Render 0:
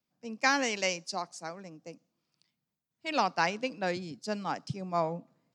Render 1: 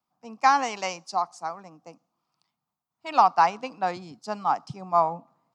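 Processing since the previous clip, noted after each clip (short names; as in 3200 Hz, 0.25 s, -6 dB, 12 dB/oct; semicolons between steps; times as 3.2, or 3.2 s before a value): band shelf 960 Hz +13.5 dB 1.1 oct; gain -2 dB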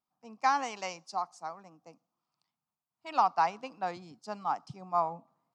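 wow and flutter 26 cents; gain -7.5 dB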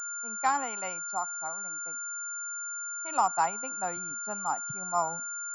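whine 1400 Hz -39 dBFS; pulse-width modulation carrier 7200 Hz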